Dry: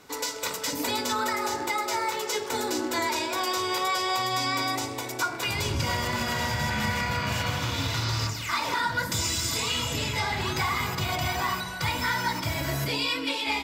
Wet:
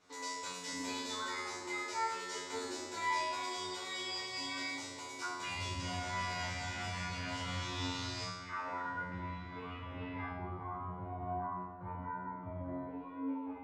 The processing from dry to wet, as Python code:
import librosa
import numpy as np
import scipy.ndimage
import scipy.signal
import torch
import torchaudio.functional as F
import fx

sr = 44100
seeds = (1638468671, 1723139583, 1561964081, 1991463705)

y = fx.lowpass(x, sr, hz=fx.steps((0.0, 8400.0), (8.25, 2000.0), (10.3, 1100.0)), slope=24)
y = fx.comb_fb(y, sr, f0_hz=90.0, decay_s=0.86, harmonics='all', damping=0.0, mix_pct=100)
y = fx.echo_thinned(y, sr, ms=94, feedback_pct=78, hz=420.0, wet_db=-19.0)
y = F.gain(torch.from_numpy(y), 3.0).numpy()